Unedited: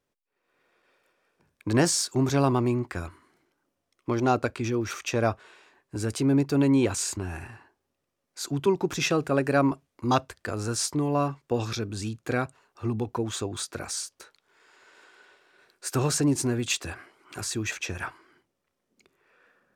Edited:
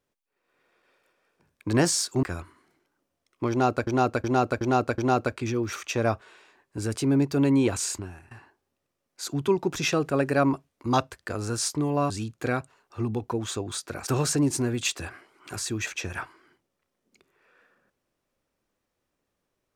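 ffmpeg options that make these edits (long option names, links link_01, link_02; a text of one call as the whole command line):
ffmpeg -i in.wav -filter_complex "[0:a]asplit=9[link_01][link_02][link_03][link_04][link_05][link_06][link_07][link_08][link_09];[link_01]atrim=end=2.232[link_10];[link_02]atrim=start=2.888:end=4.532[link_11];[link_03]atrim=start=4.158:end=4.532[link_12];[link_04]atrim=start=4.158:end=4.532[link_13];[link_05]atrim=start=4.158:end=4.532[link_14];[link_06]atrim=start=4.158:end=7.49,asetpts=PTS-STARTPTS,afade=type=out:start_time=2.962:duration=0.37:curve=qua:silence=0.16788[link_15];[link_07]atrim=start=7.49:end=11.282,asetpts=PTS-STARTPTS,afade=type=in:duration=0.004:curve=hsin:silence=0.16788[link_16];[link_08]atrim=start=11.948:end=13.922[link_17];[link_09]atrim=start=15.918[link_18];[link_10][link_11]acrossfade=duration=0.004:curve1=hsin:curve2=hsin[link_19];[link_19][link_12]acrossfade=duration=0.004:curve1=hsin:curve2=hsin[link_20];[link_20][link_13]acrossfade=duration=0.004:curve1=hsin:curve2=hsin[link_21];[link_21][link_14]acrossfade=duration=0.004:curve1=hsin:curve2=hsin[link_22];[link_15][link_16]concat=n=2:v=0:a=1[link_23];[link_22][link_23]acrossfade=duration=0.004:curve1=hsin:curve2=hsin[link_24];[link_24][link_17]acrossfade=duration=0.004:curve1=hsin:curve2=hsin[link_25];[link_25][link_18]acrossfade=duration=0.004:curve1=hsin:curve2=hsin" out.wav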